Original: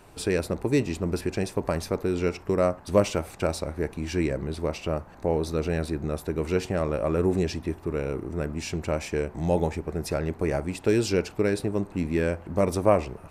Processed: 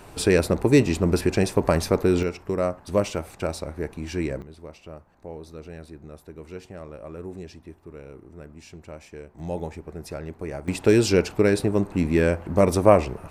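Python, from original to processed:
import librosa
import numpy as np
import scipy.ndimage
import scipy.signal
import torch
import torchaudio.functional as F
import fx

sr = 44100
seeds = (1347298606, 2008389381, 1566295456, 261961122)

y = fx.gain(x, sr, db=fx.steps((0.0, 6.5), (2.23, -1.5), (4.42, -13.0), (9.39, -6.5), (10.68, 5.0)))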